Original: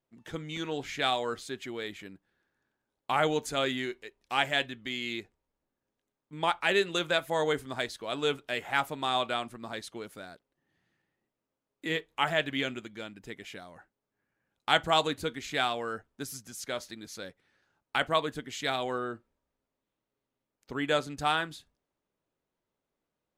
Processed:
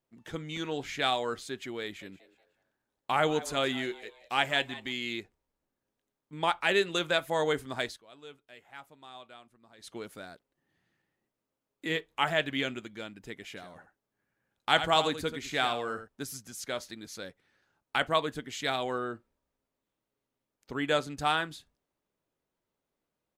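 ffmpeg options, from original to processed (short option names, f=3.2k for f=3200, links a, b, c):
-filter_complex "[0:a]asettb=1/sr,asplit=3[a][b][c];[a]atrim=end=1.834[d];[b]atrim=start=1.83:end=4.92,asetpts=PTS-STARTPTS,afade=t=in:d=0.004:c=qsin,afade=t=out:st=3.086:d=0.004:c=qsin,asplit=4[e][f][g][h];[f]adelay=182,afreqshift=120,volume=-17dB[i];[g]adelay=364,afreqshift=240,volume=-26.1dB[j];[h]adelay=546,afreqshift=360,volume=-35.2dB[k];[e][i][j][k]amix=inputs=4:normalize=0,atrim=end_sample=136269[l];[c]atrim=start=4.916[m];[d][l]acrossfade=d=0.004:c1=hsin:c2=qsin[n];[n][m]acrossfade=d=0.004:c1=qsin:c2=hsin,asplit=3[o][p][q];[o]afade=t=out:st=13.56:d=0.02[r];[p]aecho=1:1:83:0.299,afade=t=in:st=13.56:d=0.02,afade=t=out:st=16.07:d=0.02[s];[q]afade=t=in:st=16.07:d=0.02[t];[r][s][t]amix=inputs=3:normalize=0,asplit=3[u][v][w];[u]atrim=end=8.02,asetpts=PTS-STARTPTS,afade=t=out:st=7.89:d=0.13:silence=0.105925[x];[v]atrim=start=8.02:end=9.78,asetpts=PTS-STARTPTS,volume=-19.5dB[y];[w]atrim=start=9.78,asetpts=PTS-STARTPTS,afade=t=in:d=0.13:silence=0.105925[z];[x][y][z]concat=n=3:v=0:a=1"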